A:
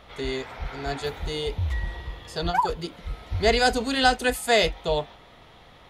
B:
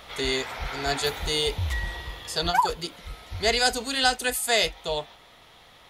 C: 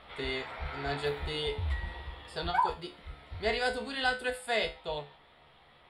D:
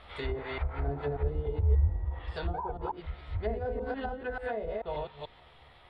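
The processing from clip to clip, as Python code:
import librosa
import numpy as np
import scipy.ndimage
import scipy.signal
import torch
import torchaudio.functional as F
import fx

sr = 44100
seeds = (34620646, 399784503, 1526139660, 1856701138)

y1 = fx.low_shelf(x, sr, hz=490.0, db=-6.5)
y1 = fx.rider(y1, sr, range_db=5, speed_s=2.0)
y1 = fx.high_shelf(y1, sr, hz=4900.0, db=10.0)
y2 = np.convolve(y1, np.full(7, 1.0 / 7))[:len(y1)]
y2 = fx.comb_fb(y2, sr, f0_hz=72.0, decay_s=0.3, harmonics='all', damping=0.0, mix_pct=80)
y2 = y2 * 10.0 ** (1.0 / 20.0)
y3 = fx.reverse_delay(y2, sr, ms=146, wet_db=-2.0)
y3 = fx.low_shelf_res(y3, sr, hz=120.0, db=6.0, q=1.5)
y3 = fx.env_lowpass_down(y3, sr, base_hz=530.0, full_db=-26.0)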